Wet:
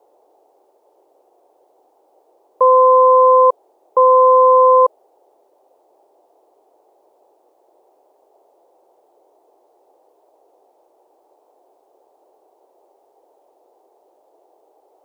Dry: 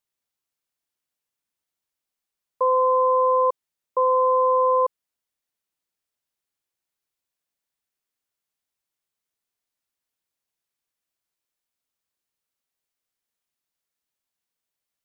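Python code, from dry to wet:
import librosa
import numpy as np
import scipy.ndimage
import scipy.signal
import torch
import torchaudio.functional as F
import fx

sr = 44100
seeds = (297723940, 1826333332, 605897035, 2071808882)

y = fx.dmg_noise_band(x, sr, seeds[0], low_hz=350.0, high_hz=850.0, level_db=-66.0)
y = y * 10.0 ** (9.0 / 20.0)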